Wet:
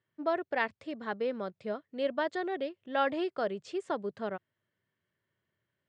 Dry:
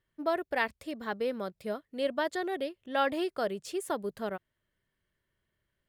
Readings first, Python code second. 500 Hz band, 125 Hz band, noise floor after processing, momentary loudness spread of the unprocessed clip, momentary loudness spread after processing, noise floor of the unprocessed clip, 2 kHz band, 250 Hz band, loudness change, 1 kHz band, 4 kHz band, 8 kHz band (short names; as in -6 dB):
-0.5 dB, n/a, under -85 dBFS, 8 LU, 8 LU, -83 dBFS, -1.0 dB, -1.0 dB, -1.0 dB, -0.5 dB, -3.5 dB, under -10 dB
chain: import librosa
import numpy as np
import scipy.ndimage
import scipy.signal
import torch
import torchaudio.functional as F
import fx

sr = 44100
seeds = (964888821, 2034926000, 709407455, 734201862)

y = scipy.signal.sosfilt(scipy.signal.ellip(3, 1.0, 40, [100.0, 8300.0], 'bandpass', fs=sr, output='sos'), x)
y = fx.air_absorb(y, sr, metres=120.0)